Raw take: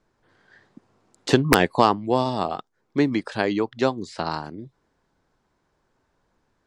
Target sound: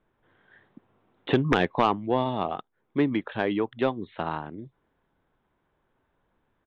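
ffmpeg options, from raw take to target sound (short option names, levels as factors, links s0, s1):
-af "aresample=8000,volume=2,asoftclip=hard,volume=0.501,aresample=44100,acontrast=48,volume=0.376"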